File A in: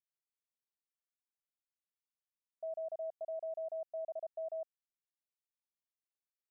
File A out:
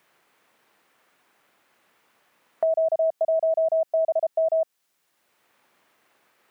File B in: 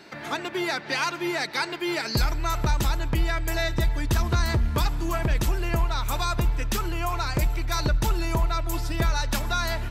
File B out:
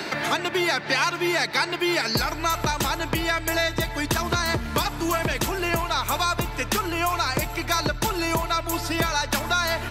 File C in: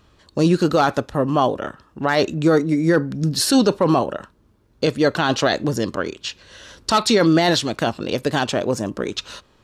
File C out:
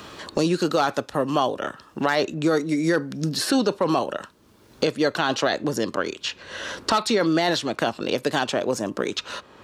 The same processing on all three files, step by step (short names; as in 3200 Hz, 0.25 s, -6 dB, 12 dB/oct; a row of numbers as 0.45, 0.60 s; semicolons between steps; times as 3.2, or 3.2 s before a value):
HPF 280 Hz 6 dB/oct; three-band squash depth 70%; match loudness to -24 LUFS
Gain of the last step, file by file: +19.0, +5.0, -3.0 dB